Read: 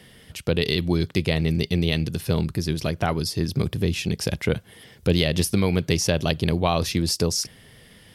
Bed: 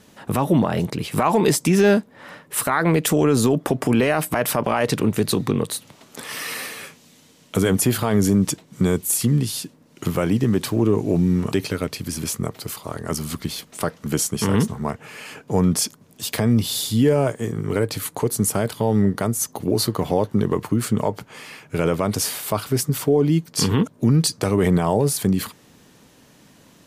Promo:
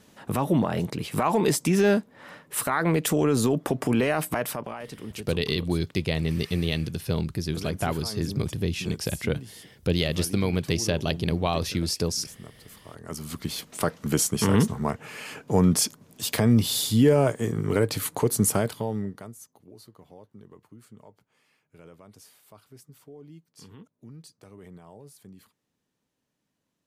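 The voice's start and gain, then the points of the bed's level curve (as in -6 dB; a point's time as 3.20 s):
4.80 s, -4.0 dB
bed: 4.34 s -5 dB
4.85 s -19 dB
12.67 s -19 dB
13.61 s -1.5 dB
18.56 s -1.5 dB
19.64 s -29 dB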